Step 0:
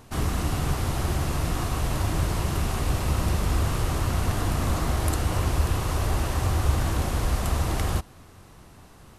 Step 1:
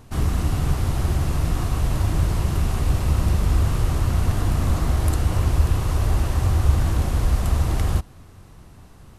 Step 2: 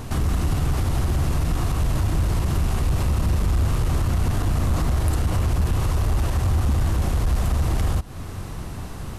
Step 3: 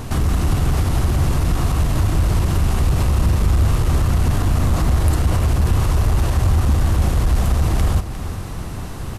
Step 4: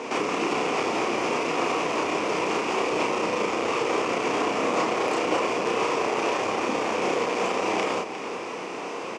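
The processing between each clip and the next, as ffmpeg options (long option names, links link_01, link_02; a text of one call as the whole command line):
ffmpeg -i in.wav -af "lowshelf=frequency=200:gain=8,volume=-1.5dB" out.wav
ffmpeg -i in.wav -af "aeval=exprs='0.562*sin(PI/2*2*val(0)/0.562)':channel_layout=same,acompressor=threshold=-16dB:ratio=6,alimiter=limit=-18dB:level=0:latency=1:release=323,volume=3.5dB" out.wav
ffmpeg -i in.wav -af "aecho=1:1:354:0.282,volume=4dB" out.wav
ffmpeg -i in.wav -filter_complex "[0:a]highpass=frequency=290:width=0.5412,highpass=frequency=290:width=1.3066,equalizer=frequency=470:width_type=q:width=4:gain=8,equalizer=frequency=1000:width_type=q:width=4:gain=4,equalizer=frequency=1600:width_type=q:width=4:gain=-5,equalizer=frequency=2400:width_type=q:width=4:gain=10,equalizer=frequency=4000:width_type=q:width=4:gain=-8,lowpass=frequency=6300:width=0.5412,lowpass=frequency=6300:width=1.3066,asplit=2[link_01][link_02];[link_02]adelay=32,volume=-2.5dB[link_03];[link_01][link_03]amix=inputs=2:normalize=0" out.wav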